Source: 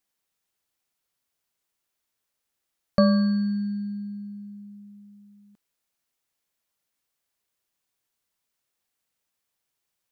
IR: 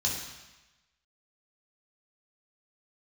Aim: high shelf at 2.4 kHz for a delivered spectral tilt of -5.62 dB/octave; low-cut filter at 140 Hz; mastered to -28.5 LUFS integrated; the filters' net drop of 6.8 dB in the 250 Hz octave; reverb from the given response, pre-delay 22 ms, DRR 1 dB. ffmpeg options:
-filter_complex "[0:a]highpass=140,equalizer=f=250:t=o:g=-8,highshelf=f=2400:g=-5.5,asplit=2[s0][s1];[1:a]atrim=start_sample=2205,adelay=22[s2];[s1][s2]afir=irnorm=-1:irlink=0,volume=0.422[s3];[s0][s3]amix=inputs=2:normalize=0,volume=0.708"

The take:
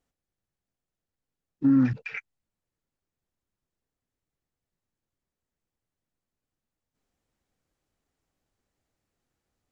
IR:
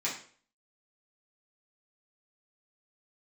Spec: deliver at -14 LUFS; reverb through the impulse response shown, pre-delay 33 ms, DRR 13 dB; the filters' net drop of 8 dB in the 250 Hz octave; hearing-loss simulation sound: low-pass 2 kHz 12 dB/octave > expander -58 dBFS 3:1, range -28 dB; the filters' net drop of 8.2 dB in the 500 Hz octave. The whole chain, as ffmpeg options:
-filter_complex "[0:a]equalizer=f=250:t=o:g=-6.5,equalizer=f=500:t=o:g=-8,asplit=2[s0][s1];[1:a]atrim=start_sample=2205,adelay=33[s2];[s1][s2]afir=irnorm=-1:irlink=0,volume=0.106[s3];[s0][s3]amix=inputs=2:normalize=0,lowpass=2000,agate=range=0.0398:threshold=0.00126:ratio=3,volume=6.68"

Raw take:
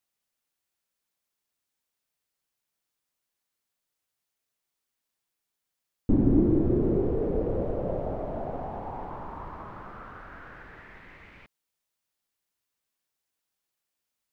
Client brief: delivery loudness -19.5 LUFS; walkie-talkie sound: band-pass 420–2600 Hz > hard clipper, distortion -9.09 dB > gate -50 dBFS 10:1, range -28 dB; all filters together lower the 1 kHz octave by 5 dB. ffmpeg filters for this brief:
-af "highpass=420,lowpass=2600,equalizer=f=1000:t=o:g=-6.5,asoftclip=type=hard:threshold=0.0251,agate=range=0.0398:threshold=0.00316:ratio=10,volume=8.91"

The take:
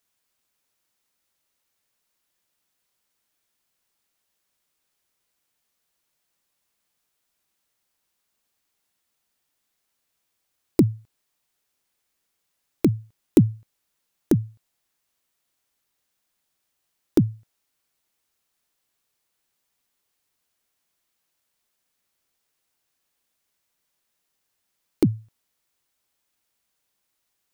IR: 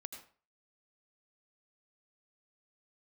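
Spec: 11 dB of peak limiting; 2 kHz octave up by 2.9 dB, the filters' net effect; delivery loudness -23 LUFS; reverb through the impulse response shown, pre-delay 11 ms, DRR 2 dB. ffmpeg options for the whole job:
-filter_complex "[0:a]equalizer=f=2000:t=o:g=3.5,alimiter=limit=0.211:level=0:latency=1,asplit=2[s0][s1];[1:a]atrim=start_sample=2205,adelay=11[s2];[s1][s2]afir=irnorm=-1:irlink=0,volume=1.26[s3];[s0][s3]amix=inputs=2:normalize=0,volume=1.5"

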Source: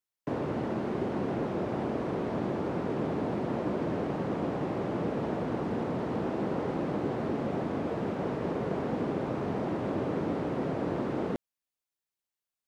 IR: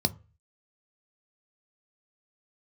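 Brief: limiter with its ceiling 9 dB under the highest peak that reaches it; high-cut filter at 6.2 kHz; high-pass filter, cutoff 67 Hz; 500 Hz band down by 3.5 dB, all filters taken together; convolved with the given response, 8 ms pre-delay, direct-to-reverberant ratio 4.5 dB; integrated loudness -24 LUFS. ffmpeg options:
-filter_complex "[0:a]highpass=67,lowpass=6200,equalizer=f=500:t=o:g=-4.5,alimiter=level_in=1.88:limit=0.0631:level=0:latency=1,volume=0.531,asplit=2[s0][s1];[1:a]atrim=start_sample=2205,adelay=8[s2];[s1][s2]afir=irnorm=-1:irlink=0,volume=0.251[s3];[s0][s3]amix=inputs=2:normalize=0,volume=2.82"

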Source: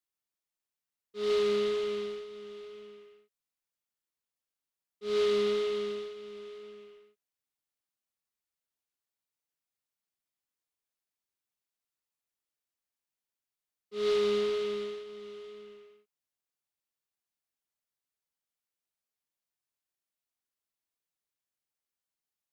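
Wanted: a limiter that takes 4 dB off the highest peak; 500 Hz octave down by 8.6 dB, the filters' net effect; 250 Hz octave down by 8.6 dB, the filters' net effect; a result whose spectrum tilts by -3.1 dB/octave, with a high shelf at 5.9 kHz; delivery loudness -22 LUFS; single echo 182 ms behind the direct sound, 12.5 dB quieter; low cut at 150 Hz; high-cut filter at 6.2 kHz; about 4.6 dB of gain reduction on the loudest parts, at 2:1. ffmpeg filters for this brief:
-af "highpass=150,lowpass=6200,equalizer=f=250:t=o:g=-8.5,equalizer=f=500:t=o:g=-7.5,highshelf=f=5900:g=-4,acompressor=threshold=0.01:ratio=2,alimiter=level_in=3.16:limit=0.0631:level=0:latency=1,volume=0.316,aecho=1:1:182:0.237,volume=13.3"

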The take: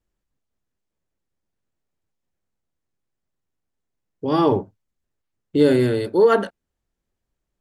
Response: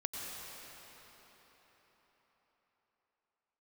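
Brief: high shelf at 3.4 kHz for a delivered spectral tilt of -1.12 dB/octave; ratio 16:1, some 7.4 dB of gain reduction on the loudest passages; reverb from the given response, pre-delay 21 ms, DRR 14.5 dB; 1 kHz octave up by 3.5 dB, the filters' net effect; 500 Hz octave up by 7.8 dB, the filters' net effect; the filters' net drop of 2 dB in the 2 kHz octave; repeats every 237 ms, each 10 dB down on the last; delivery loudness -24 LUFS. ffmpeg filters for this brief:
-filter_complex "[0:a]equalizer=f=500:t=o:g=9,equalizer=f=1000:t=o:g=3,equalizer=f=2000:t=o:g=-3.5,highshelf=f=3400:g=-5,acompressor=threshold=0.355:ratio=16,aecho=1:1:237|474|711|948:0.316|0.101|0.0324|0.0104,asplit=2[s0][s1];[1:a]atrim=start_sample=2205,adelay=21[s2];[s1][s2]afir=irnorm=-1:irlink=0,volume=0.15[s3];[s0][s3]amix=inputs=2:normalize=0,volume=0.447"

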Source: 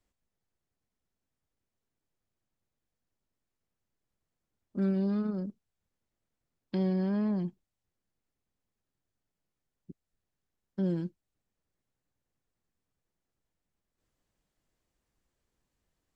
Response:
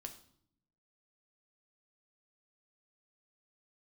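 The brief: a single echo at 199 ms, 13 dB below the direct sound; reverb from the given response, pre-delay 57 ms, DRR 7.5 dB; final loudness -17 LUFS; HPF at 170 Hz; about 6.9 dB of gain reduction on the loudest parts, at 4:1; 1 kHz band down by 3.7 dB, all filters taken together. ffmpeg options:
-filter_complex "[0:a]highpass=170,equalizer=f=1000:t=o:g=-5,acompressor=threshold=0.0158:ratio=4,aecho=1:1:199:0.224,asplit=2[s0][s1];[1:a]atrim=start_sample=2205,adelay=57[s2];[s1][s2]afir=irnorm=-1:irlink=0,volume=0.708[s3];[s0][s3]amix=inputs=2:normalize=0,volume=15.8"

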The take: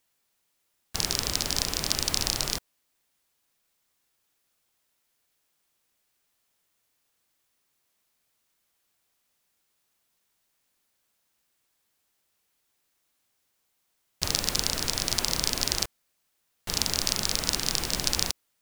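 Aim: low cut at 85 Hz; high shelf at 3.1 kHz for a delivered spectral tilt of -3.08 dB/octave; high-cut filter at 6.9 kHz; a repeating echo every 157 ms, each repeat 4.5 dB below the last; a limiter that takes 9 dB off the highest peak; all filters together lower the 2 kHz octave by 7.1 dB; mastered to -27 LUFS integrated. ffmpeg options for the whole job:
-af "highpass=85,lowpass=6900,equalizer=f=2000:t=o:g=-6.5,highshelf=f=3100:g=-7,alimiter=limit=0.141:level=0:latency=1,aecho=1:1:157|314|471|628|785|942|1099|1256|1413:0.596|0.357|0.214|0.129|0.0772|0.0463|0.0278|0.0167|0.01,volume=2.66"

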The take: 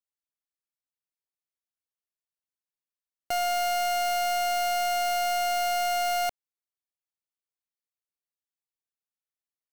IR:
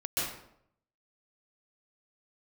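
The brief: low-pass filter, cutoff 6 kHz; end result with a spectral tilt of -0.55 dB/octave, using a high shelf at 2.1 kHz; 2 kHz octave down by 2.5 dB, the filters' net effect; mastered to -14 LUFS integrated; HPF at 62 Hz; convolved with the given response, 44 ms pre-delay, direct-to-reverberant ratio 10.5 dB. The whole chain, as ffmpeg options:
-filter_complex "[0:a]highpass=62,lowpass=6000,equalizer=f=2000:t=o:g=-8.5,highshelf=f=2100:g=8,asplit=2[s0][s1];[1:a]atrim=start_sample=2205,adelay=44[s2];[s1][s2]afir=irnorm=-1:irlink=0,volume=0.133[s3];[s0][s3]amix=inputs=2:normalize=0,volume=3.16"

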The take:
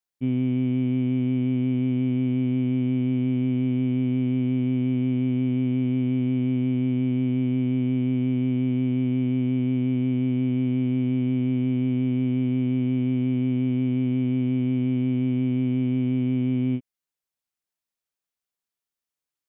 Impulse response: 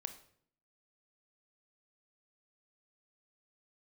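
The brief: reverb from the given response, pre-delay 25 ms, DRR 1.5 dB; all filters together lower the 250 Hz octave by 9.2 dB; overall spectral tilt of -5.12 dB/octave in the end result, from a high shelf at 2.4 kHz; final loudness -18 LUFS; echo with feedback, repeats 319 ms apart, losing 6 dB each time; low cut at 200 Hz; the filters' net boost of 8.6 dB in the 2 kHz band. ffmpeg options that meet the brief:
-filter_complex "[0:a]highpass=200,equalizer=f=250:t=o:g=-8,equalizer=f=2000:t=o:g=6,highshelf=f=2400:g=7.5,aecho=1:1:319|638|957|1276|1595|1914:0.501|0.251|0.125|0.0626|0.0313|0.0157,asplit=2[s0][s1];[1:a]atrim=start_sample=2205,adelay=25[s2];[s1][s2]afir=irnorm=-1:irlink=0,volume=1.12[s3];[s0][s3]amix=inputs=2:normalize=0,volume=3.55"

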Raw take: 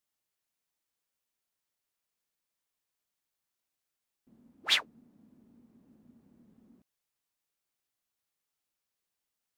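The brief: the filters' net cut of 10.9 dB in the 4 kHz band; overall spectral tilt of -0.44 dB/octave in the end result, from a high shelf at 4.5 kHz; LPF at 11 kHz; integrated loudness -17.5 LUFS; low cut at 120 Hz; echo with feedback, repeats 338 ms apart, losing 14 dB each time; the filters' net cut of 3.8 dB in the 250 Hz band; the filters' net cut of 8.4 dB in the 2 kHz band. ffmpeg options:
-af "highpass=120,lowpass=11000,equalizer=f=250:t=o:g=-4,equalizer=f=2000:t=o:g=-6.5,equalizer=f=4000:t=o:g=-8,highshelf=f=4500:g=-7,aecho=1:1:338|676:0.2|0.0399,volume=15"

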